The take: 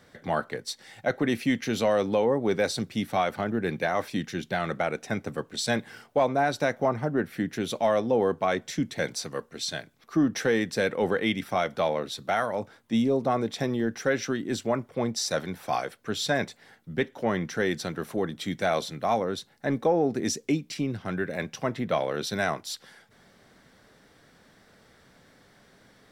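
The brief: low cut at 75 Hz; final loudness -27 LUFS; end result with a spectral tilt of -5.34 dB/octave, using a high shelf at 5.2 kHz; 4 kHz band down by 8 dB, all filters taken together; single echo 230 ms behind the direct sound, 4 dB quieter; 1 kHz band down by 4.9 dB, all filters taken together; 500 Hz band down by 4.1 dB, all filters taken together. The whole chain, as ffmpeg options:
-af "highpass=75,equalizer=f=500:t=o:g=-3.5,equalizer=f=1000:t=o:g=-5,equalizer=f=4000:t=o:g=-6.5,highshelf=f=5200:g=-7,aecho=1:1:230:0.631,volume=1.41"

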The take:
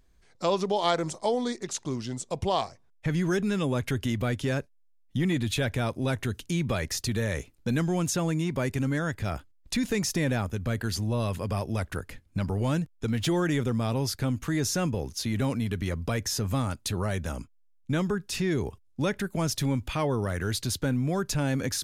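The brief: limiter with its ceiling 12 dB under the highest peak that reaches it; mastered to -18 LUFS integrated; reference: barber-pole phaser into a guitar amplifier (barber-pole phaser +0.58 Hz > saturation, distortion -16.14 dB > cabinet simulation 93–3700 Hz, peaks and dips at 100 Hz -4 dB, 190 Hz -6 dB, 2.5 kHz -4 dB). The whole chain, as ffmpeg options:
-filter_complex "[0:a]alimiter=limit=0.0708:level=0:latency=1,asplit=2[s0][s1];[s1]afreqshift=0.58[s2];[s0][s2]amix=inputs=2:normalize=1,asoftclip=threshold=0.0355,highpass=93,equalizer=f=100:t=q:w=4:g=-4,equalizer=f=190:t=q:w=4:g=-6,equalizer=f=2500:t=q:w=4:g=-4,lowpass=f=3700:w=0.5412,lowpass=f=3700:w=1.3066,volume=11.9"

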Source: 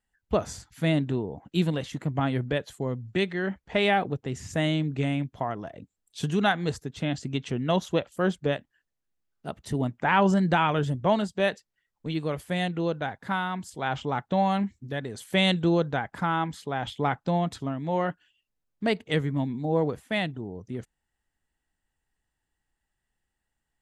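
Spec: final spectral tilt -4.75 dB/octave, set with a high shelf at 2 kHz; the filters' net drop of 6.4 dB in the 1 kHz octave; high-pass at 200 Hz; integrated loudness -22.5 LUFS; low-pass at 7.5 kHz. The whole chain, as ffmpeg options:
-af "highpass=200,lowpass=7500,equalizer=f=1000:t=o:g=-8,highshelf=f=2000:g=-4,volume=2.82"

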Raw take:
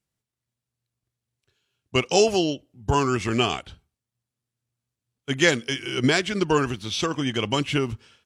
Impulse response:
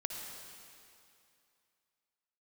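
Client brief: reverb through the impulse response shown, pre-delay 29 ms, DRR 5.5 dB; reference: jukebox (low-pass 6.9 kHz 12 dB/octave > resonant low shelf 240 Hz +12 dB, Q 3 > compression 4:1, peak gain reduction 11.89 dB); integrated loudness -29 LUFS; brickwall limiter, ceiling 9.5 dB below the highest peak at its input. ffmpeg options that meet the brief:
-filter_complex "[0:a]alimiter=limit=0.188:level=0:latency=1,asplit=2[s0][s1];[1:a]atrim=start_sample=2205,adelay=29[s2];[s1][s2]afir=irnorm=-1:irlink=0,volume=0.473[s3];[s0][s3]amix=inputs=2:normalize=0,lowpass=6900,lowshelf=f=240:t=q:w=3:g=12,acompressor=threshold=0.112:ratio=4,volume=0.531"

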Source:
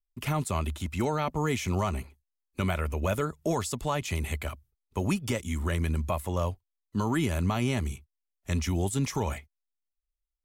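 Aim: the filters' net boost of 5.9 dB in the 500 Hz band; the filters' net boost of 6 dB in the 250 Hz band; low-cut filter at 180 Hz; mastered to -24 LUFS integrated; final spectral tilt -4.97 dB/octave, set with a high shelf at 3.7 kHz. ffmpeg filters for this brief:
-af "highpass=180,equalizer=f=250:t=o:g=8,equalizer=f=500:t=o:g=5,highshelf=f=3700:g=6,volume=1.41"

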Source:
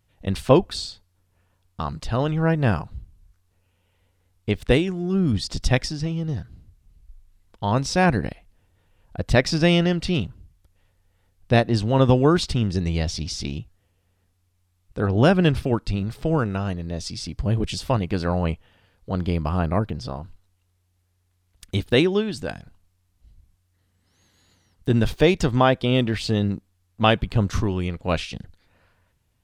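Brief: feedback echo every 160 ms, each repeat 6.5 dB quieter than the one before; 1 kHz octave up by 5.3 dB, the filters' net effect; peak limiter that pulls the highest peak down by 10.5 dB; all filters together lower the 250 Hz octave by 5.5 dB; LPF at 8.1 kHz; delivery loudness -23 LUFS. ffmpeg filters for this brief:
-af "lowpass=8100,equalizer=f=250:t=o:g=-9,equalizer=f=1000:t=o:g=7.5,alimiter=limit=0.299:level=0:latency=1,aecho=1:1:160|320|480|640|800|960:0.473|0.222|0.105|0.0491|0.0231|0.0109,volume=1.19"

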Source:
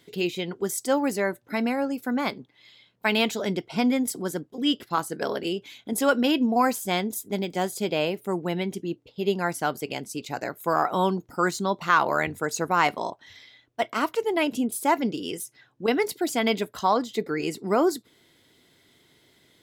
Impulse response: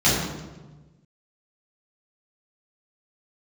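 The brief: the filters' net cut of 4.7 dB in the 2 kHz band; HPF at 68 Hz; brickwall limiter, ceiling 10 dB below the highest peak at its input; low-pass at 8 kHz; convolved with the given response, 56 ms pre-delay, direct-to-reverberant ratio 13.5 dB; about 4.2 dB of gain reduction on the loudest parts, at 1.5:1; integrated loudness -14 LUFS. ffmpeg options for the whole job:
-filter_complex "[0:a]highpass=68,lowpass=8000,equalizer=f=2000:t=o:g=-6.5,acompressor=threshold=0.0355:ratio=1.5,alimiter=limit=0.0708:level=0:latency=1,asplit=2[s0][s1];[1:a]atrim=start_sample=2205,adelay=56[s2];[s1][s2]afir=irnorm=-1:irlink=0,volume=0.0237[s3];[s0][s3]amix=inputs=2:normalize=0,volume=8.91"

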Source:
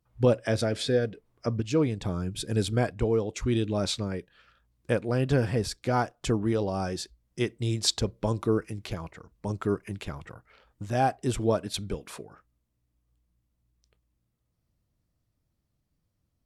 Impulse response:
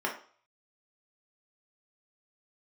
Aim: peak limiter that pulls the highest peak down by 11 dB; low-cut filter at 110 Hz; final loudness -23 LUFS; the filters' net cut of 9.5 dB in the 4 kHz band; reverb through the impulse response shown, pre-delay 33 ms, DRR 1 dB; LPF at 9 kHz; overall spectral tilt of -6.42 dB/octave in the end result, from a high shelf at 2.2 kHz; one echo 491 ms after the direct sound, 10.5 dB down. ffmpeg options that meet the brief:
-filter_complex "[0:a]highpass=110,lowpass=9000,highshelf=f=2200:g=-4,equalizer=f=4000:t=o:g=-7.5,alimiter=limit=0.0944:level=0:latency=1,aecho=1:1:491:0.299,asplit=2[s0][s1];[1:a]atrim=start_sample=2205,adelay=33[s2];[s1][s2]afir=irnorm=-1:irlink=0,volume=0.355[s3];[s0][s3]amix=inputs=2:normalize=0,volume=2.66"

